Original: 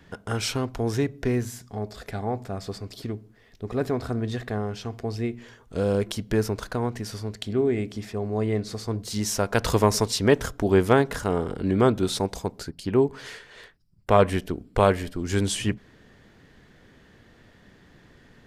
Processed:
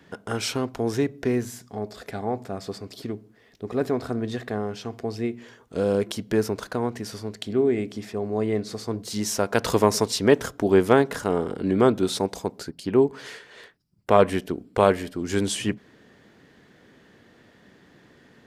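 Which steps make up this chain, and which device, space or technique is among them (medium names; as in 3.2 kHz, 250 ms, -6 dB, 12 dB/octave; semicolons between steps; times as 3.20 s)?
filter by subtraction (in parallel: low-pass 280 Hz 12 dB/octave + polarity flip)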